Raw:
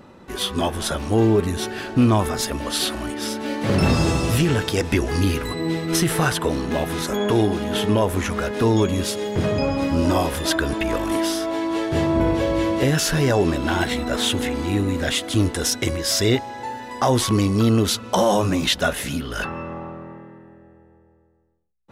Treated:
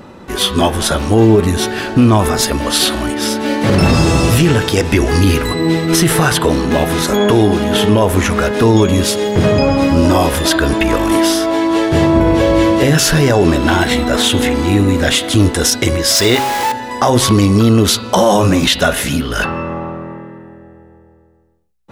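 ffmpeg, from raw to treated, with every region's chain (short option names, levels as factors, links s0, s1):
-filter_complex "[0:a]asettb=1/sr,asplit=3[s0][s1][s2];[s0]atrim=end=16.154[s3];[s1]atrim=start=16.15:end=16.72,asetpts=PTS-STARTPTS,afade=t=in:d=0.004:c=qsin,afade=t=out:st=0.566:d=0.004:c=qsin,aeval=exprs='val(0)+0.5*0.0708*sgn(val(0))':c=same,lowshelf=f=290:g=-10[s4];[s2]atrim=start=16.716[s5];[s3][s4]acrossfade=d=0.004:c1=hsin:c2=qsin[s6];[s6][s5]acrossfade=d=0.004:c1=qsin:c2=hsin,bandreject=f=130.9:t=h:w=4,bandreject=f=261.8:t=h:w=4,bandreject=f=392.7:t=h:w=4,bandreject=f=523.6:t=h:w=4,bandreject=f=654.5:t=h:w=4,bandreject=f=785.4:t=h:w=4,bandreject=f=916.3:t=h:w=4,bandreject=f=1047.2:t=h:w=4,bandreject=f=1178.1:t=h:w=4,bandreject=f=1309:t=h:w=4,bandreject=f=1439.9:t=h:w=4,bandreject=f=1570.8:t=h:w=4,bandreject=f=1701.7:t=h:w=4,bandreject=f=1832.6:t=h:w=4,bandreject=f=1963.5:t=h:w=4,bandreject=f=2094.4:t=h:w=4,bandreject=f=2225.3:t=h:w=4,bandreject=f=2356.2:t=h:w=4,bandreject=f=2487.1:t=h:w=4,bandreject=f=2618:t=h:w=4,bandreject=f=2748.9:t=h:w=4,bandreject=f=2879.8:t=h:w=4,bandreject=f=3010.7:t=h:w=4,bandreject=f=3141.6:t=h:w=4,bandreject=f=3272.5:t=h:w=4,bandreject=f=3403.4:t=h:w=4,bandreject=f=3534.3:t=h:w=4,bandreject=f=3665.2:t=h:w=4,bandreject=f=3796.1:t=h:w=4,bandreject=f=3927:t=h:w=4,bandreject=f=4057.9:t=h:w=4,bandreject=f=4188.8:t=h:w=4,bandreject=f=4319.7:t=h:w=4,bandreject=f=4450.6:t=h:w=4,bandreject=f=4581.5:t=h:w=4,bandreject=f=4712.4:t=h:w=4,bandreject=f=4843.3:t=h:w=4,alimiter=level_in=3.55:limit=0.891:release=50:level=0:latency=1,volume=0.891"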